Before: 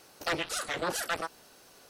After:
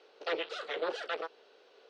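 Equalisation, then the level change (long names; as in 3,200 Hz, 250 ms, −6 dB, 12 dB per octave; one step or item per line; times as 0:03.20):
high-pass with resonance 440 Hz, resonance Q 4.9
transistor ladder low-pass 4,200 Hz, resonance 40%
parametric band 1,400 Hz +2 dB 0.22 octaves
0.0 dB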